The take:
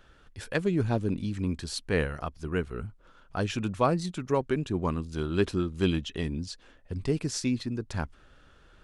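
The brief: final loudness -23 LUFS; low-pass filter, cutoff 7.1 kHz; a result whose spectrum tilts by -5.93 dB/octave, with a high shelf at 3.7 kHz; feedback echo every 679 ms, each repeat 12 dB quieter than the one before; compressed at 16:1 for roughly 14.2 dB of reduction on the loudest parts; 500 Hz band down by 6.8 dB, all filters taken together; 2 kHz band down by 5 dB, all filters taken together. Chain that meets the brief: low-pass 7.1 kHz; peaking EQ 500 Hz -9 dB; peaking EQ 2 kHz -4.5 dB; treble shelf 3.7 kHz -5.5 dB; compression 16:1, threshold -37 dBFS; feedback delay 679 ms, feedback 25%, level -12 dB; trim +20.5 dB

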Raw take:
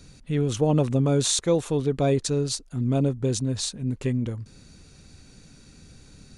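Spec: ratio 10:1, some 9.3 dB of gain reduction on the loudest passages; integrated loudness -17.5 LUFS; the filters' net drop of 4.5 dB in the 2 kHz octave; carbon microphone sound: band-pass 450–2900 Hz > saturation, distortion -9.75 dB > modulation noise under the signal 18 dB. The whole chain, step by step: peaking EQ 2 kHz -4.5 dB; compression 10:1, threshold -26 dBFS; band-pass 450–2900 Hz; saturation -36 dBFS; modulation noise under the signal 18 dB; trim +25.5 dB

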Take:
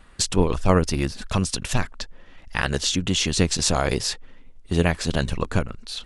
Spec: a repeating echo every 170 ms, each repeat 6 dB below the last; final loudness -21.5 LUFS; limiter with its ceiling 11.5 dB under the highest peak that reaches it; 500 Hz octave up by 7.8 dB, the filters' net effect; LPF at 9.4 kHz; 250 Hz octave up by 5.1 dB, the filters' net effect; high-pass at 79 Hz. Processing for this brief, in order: high-pass 79 Hz; low-pass 9.4 kHz; peaking EQ 250 Hz +5 dB; peaking EQ 500 Hz +8 dB; peak limiter -9 dBFS; feedback delay 170 ms, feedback 50%, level -6 dB; trim +1 dB

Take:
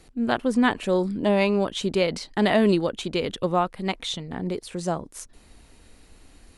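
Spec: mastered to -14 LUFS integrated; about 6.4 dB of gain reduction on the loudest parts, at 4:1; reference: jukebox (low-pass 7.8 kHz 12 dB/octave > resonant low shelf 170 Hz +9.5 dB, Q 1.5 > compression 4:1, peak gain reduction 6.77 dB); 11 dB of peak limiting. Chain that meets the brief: compression 4:1, threshold -23 dBFS; peak limiter -23.5 dBFS; low-pass 7.8 kHz 12 dB/octave; resonant low shelf 170 Hz +9.5 dB, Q 1.5; compression 4:1, threshold -33 dBFS; trim +23 dB

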